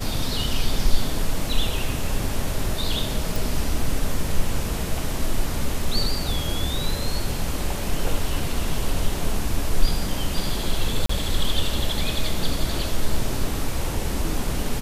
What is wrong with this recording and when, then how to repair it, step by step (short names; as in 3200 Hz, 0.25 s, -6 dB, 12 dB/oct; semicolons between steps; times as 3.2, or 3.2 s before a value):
3.36 pop
11.06–11.09 gap 34 ms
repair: de-click; interpolate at 11.06, 34 ms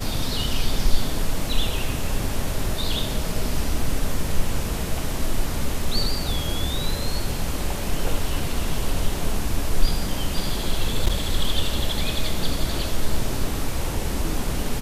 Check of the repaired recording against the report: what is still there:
none